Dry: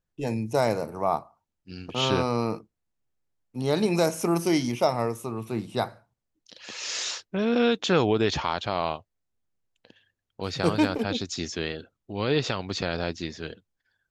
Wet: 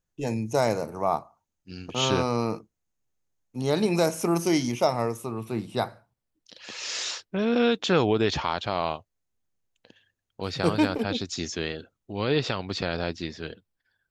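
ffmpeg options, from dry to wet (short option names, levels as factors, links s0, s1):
-af "asetnsamples=n=441:p=0,asendcmd='3.7 equalizer g 0;4.35 equalizer g 6.5;5.17 equalizer g -2.5;8.67 equalizer g 5;10.44 equalizer g -5;11.33 equalizer g 3.5;12.24 equalizer g -7.5',equalizer=f=6500:t=o:w=0.21:g=9.5"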